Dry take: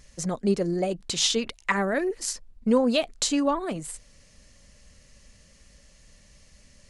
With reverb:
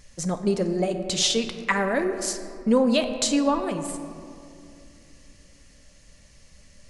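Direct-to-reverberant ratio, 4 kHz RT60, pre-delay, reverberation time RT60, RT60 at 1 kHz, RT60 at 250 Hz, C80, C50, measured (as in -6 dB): 7.0 dB, 1.2 s, 4 ms, 2.6 s, 2.3 s, 3.4 s, 9.5 dB, 8.5 dB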